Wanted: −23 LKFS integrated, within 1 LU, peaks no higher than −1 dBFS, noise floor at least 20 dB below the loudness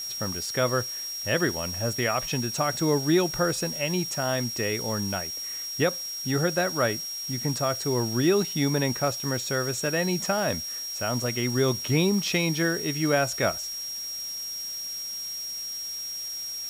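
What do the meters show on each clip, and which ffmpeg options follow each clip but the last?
interfering tone 5,600 Hz; level of the tone −32 dBFS; background noise floor −35 dBFS; target noise floor −47 dBFS; integrated loudness −26.5 LKFS; sample peak −12.0 dBFS; target loudness −23.0 LKFS
→ -af "bandreject=frequency=5600:width=30"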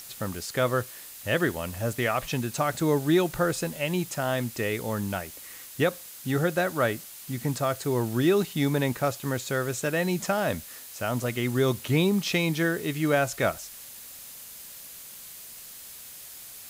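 interfering tone none found; background noise floor −44 dBFS; target noise floor −47 dBFS
→ -af "afftdn=noise_reduction=6:noise_floor=-44"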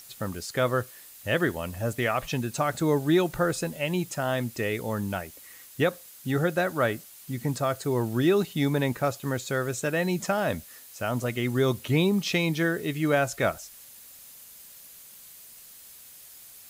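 background noise floor −49 dBFS; integrated loudness −27.5 LKFS; sample peak −12.5 dBFS; target loudness −23.0 LKFS
→ -af "volume=4.5dB"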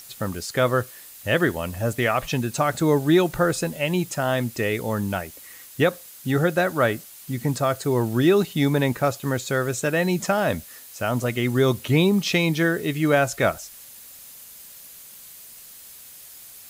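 integrated loudness −23.0 LKFS; sample peak −8.0 dBFS; background noise floor −44 dBFS

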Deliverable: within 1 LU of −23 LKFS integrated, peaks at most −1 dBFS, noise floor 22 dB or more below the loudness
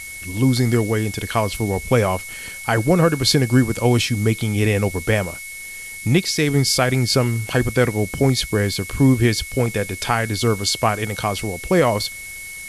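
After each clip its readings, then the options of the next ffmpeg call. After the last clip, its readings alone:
interfering tone 2,200 Hz; level of the tone −33 dBFS; background noise floor −34 dBFS; target noise floor −42 dBFS; integrated loudness −19.5 LKFS; sample peak −4.0 dBFS; target loudness −23.0 LKFS
→ -af "bandreject=frequency=2200:width=30"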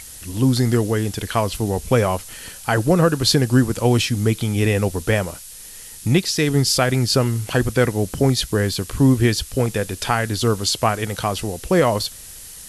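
interfering tone none found; background noise floor −39 dBFS; target noise floor −42 dBFS
→ -af "afftdn=noise_reduction=6:noise_floor=-39"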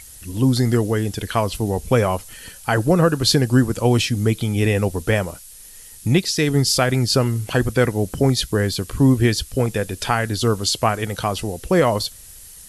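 background noise floor −42 dBFS; integrated loudness −19.5 LKFS; sample peak −4.0 dBFS; target loudness −23.0 LKFS
→ -af "volume=-3.5dB"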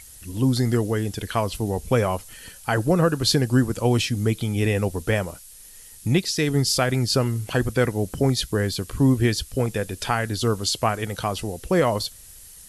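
integrated loudness −23.0 LKFS; sample peak −7.5 dBFS; background noise floor −45 dBFS

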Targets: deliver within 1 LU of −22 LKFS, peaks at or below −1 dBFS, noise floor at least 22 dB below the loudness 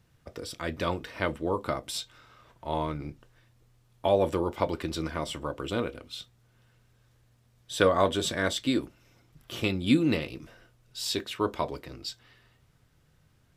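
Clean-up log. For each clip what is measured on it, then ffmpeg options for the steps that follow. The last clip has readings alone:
integrated loudness −30.0 LKFS; sample peak −8.0 dBFS; target loudness −22.0 LKFS
→ -af "volume=8dB,alimiter=limit=-1dB:level=0:latency=1"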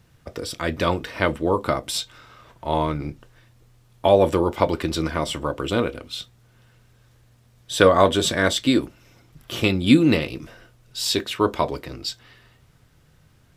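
integrated loudness −22.0 LKFS; sample peak −1.0 dBFS; background noise floor −57 dBFS

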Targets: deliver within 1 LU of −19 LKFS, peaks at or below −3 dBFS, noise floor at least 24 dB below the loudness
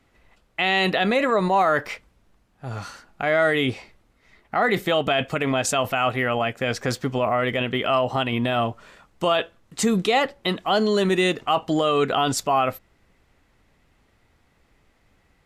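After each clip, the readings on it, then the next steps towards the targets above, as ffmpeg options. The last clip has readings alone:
integrated loudness −22.0 LKFS; sample peak −9.5 dBFS; target loudness −19.0 LKFS
→ -af "volume=3dB"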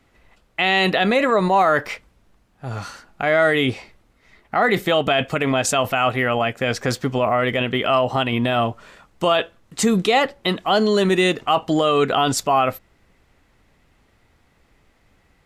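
integrated loudness −19.0 LKFS; sample peak −6.5 dBFS; background noise floor −61 dBFS

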